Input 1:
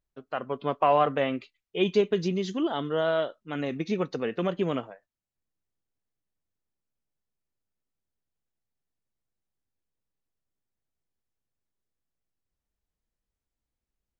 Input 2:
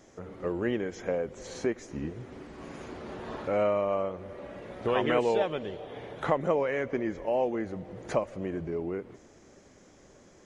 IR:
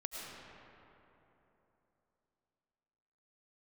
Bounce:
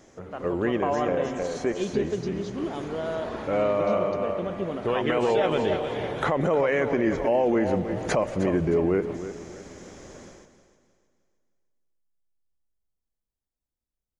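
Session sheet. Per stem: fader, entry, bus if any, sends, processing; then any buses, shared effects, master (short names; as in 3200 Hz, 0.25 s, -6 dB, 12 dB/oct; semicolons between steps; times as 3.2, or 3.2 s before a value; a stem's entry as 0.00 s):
-6.5 dB, 0.00 s, send -5.5 dB, no echo send, bell 2300 Hz -7.5 dB 1.5 oct
+2.5 dB, 0.00 s, no send, echo send -12.5 dB, AGC gain up to 9 dB; auto duck -9 dB, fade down 1.00 s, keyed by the first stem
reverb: on, RT60 3.3 s, pre-delay 65 ms
echo: feedback echo 0.31 s, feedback 37%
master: limiter -14 dBFS, peak gain reduction 12 dB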